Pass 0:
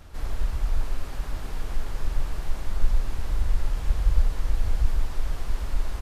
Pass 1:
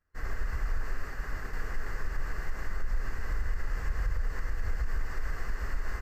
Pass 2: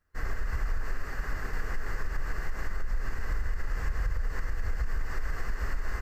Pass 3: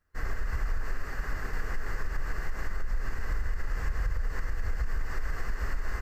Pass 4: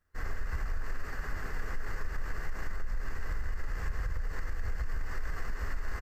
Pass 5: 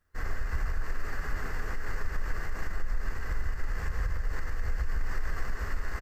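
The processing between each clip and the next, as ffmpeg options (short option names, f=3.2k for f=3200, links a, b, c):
-af "agate=range=-33dB:threshold=-27dB:ratio=3:detection=peak,superequalizer=7b=1.58:10b=2.24:11b=3.98:13b=0.355:16b=0.316,alimiter=limit=-17.5dB:level=0:latency=1:release=82,volume=-4dB"
-af "acompressor=threshold=-28dB:ratio=6,volume=4dB"
-af anull
-filter_complex "[0:a]asplit=2[a][b];[b]asoftclip=type=tanh:threshold=-33.5dB,volume=-6.5dB[c];[a][c]amix=inputs=2:normalize=0,asplit=2[d][e];[e]adelay=12,volume=-13.5dB[f];[d][f]amix=inputs=2:normalize=0,volume=-4.5dB"
-af "aecho=1:1:149:0.335,volume=2.5dB"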